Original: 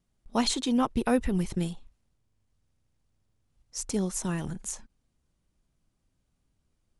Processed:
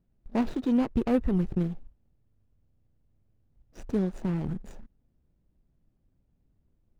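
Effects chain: median filter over 41 samples; treble shelf 5.2 kHz -11.5 dB; in parallel at -1.5 dB: compression, threshold -35 dBFS, peak gain reduction 14 dB

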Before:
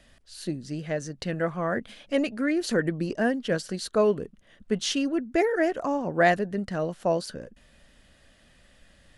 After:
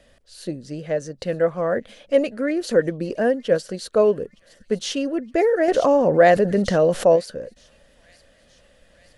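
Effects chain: peaking EQ 520 Hz +11 dB 0.58 oct; feedback echo behind a high-pass 916 ms, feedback 66%, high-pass 3.1 kHz, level -19 dB; 5.68–7.16 s: level flattener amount 50%

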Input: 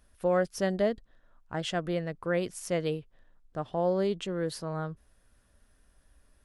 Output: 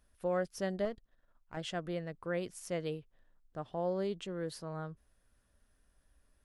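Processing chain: 0.85–1.57 s: partial rectifier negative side -7 dB; trim -7 dB

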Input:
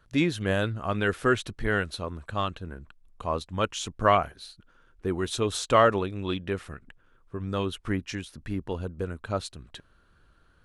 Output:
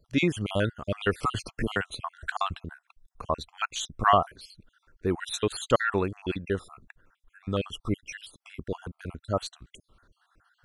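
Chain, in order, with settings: random holes in the spectrogram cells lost 52%; 1.23–2.54 s: three bands compressed up and down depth 100%; trim +2 dB

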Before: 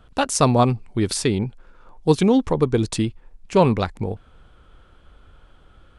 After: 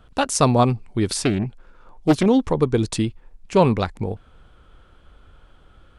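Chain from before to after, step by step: 1.12–2.26 s: loudspeaker Doppler distortion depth 0.55 ms

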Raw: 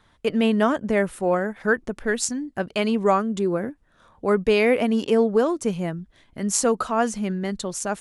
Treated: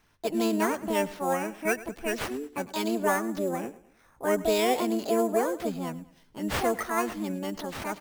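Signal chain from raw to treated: feedback delay 105 ms, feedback 40%, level -18 dB; sample-rate reducer 7.5 kHz, jitter 0%; harmony voices +7 st 0 dB; trim -9 dB

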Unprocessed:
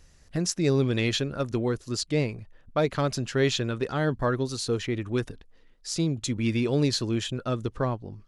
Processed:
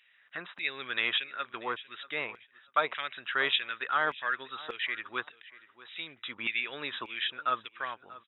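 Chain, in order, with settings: brick-wall FIR low-pass 3.9 kHz; bass shelf 280 Hz +11 dB; feedback delay 637 ms, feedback 16%, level -19 dB; LFO high-pass saw down 1.7 Hz 980–2400 Hz

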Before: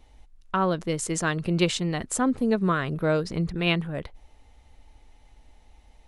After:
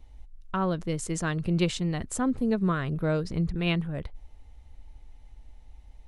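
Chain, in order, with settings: bass shelf 150 Hz +12 dB; trim -5.5 dB

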